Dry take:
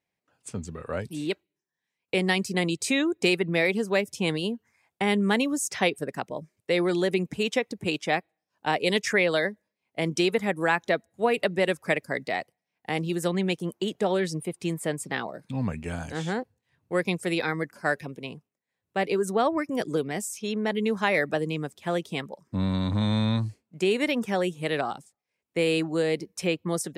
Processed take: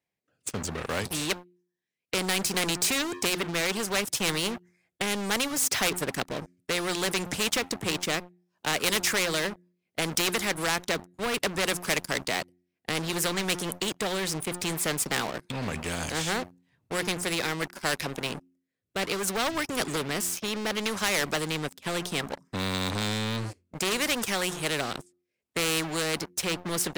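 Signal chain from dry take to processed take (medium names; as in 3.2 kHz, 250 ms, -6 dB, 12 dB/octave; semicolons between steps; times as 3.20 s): Chebyshev shaper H 7 -35 dB, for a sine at -9.5 dBFS; de-hum 88.84 Hz, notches 4; rotary cabinet horn 0.65 Hz; waveshaping leveller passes 3; spectrum-flattening compressor 2:1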